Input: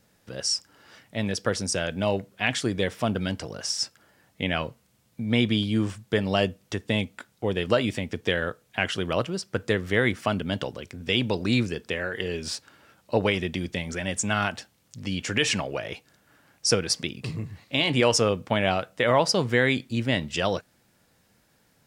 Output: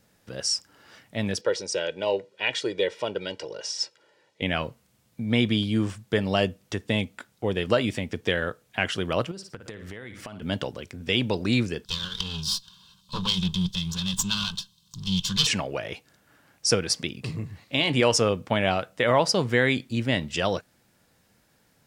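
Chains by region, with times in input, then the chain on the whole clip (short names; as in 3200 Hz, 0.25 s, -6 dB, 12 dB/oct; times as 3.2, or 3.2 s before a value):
1.41–4.42 BPF 300–5100 Hz + bell 1300 Hz -7.5 dB 0.84 oct + comb 2.1 ms, depth 75%
9.31–10.42 flutter echo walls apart 9.7 m, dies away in 0.27 s + compressor 12:1, threshold -35 dBFS
11.85–15.47 minimum comb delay 1.9 ms + EQ curve 110 Hz 0 dB, 190 Hz +13 dB, 280 Hz -7 dB, 630 Hz -22 dB, 1000 Hz +2 dB, 2100 Hz -16 dB, 3400 Hz +15 dB, 5900 Hz +6 dB, 11000 Hz -1 dB
whole clip: dry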